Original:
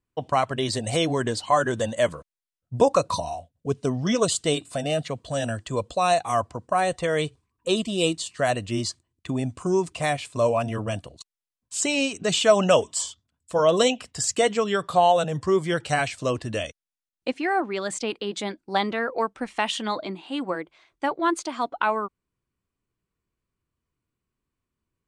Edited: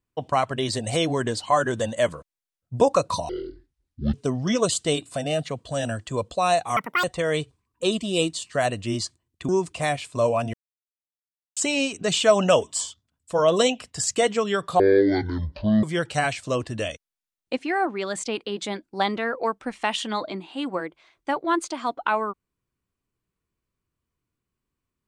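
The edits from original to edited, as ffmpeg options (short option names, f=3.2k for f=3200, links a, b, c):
-filter_complex "[0:a]asplit=10[a][b][c][d][e][f][g][h][i][j];[a]atrim=end=3.294[k];[b]atrim=start=3.29:end=3.73,asetpts=PTS-STARTPTS,asetrate=22932,aresample=44100,atrim=end_sample=37315,asetpts=PTS-STARTPTS[l];[c]atrim=start=3.726:end=6.364[m];[d]atrim=start=6.36:end=6.88,asetpts=PTS-STARTPTS,asetrate=85113,aresample=44100[n];[e]atrim=start=6.876:end=9.332[o];[f]atrim=start=9.688:end=10.74,asetpts=PTS-STARTPTS,afade=t=out:st=1.048:d=0.004:c=hsin[p];[g]atrim=start=10.74:end=11.77,asetpts=PTS-STARTPTS,volume=0[q];[h]atrim=start=11.77:end=15.004,asetpts=PTS-STARTPTS,afade=t=in:d=0.004:c=hsin[r];[i]atrim=start=15:end=15.58,asetpts=PTS-STARTPTS,asetrate=24696,aresample=44100[s];[j]atrim=start=15.576[t];[k][l]acrossfade=d=0.004:c1=hsin:c2=hsin[u];[u][m]acrossfade=d=0.004:c1=hsin:c2=hsin[v];[v][n]acrossfade=d=0.004:c1=hsin:c2=hsin[w];[w][o]acrossfade=d=0.004:c1=hsin:c2=hsin[x];[p][q][r]concat=n=3:v=0:a=1[y];[x][y]acrossfade=d=0.004:c1=hsin:c2=hsin[z];[z][s]acrossfade=d=0.004:c1=hsin:c2=hsin[aa];[aa][t]acrossfade=d=0.004:c1=hsin:c2=hsin"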